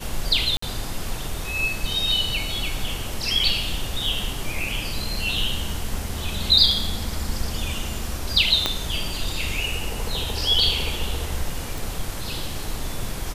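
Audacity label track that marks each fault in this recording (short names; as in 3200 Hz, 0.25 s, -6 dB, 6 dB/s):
0.570000	0.620000	gap 54 ms
8.660000	8.660000	pop -6 dBFS
11.780000	11.780000	pop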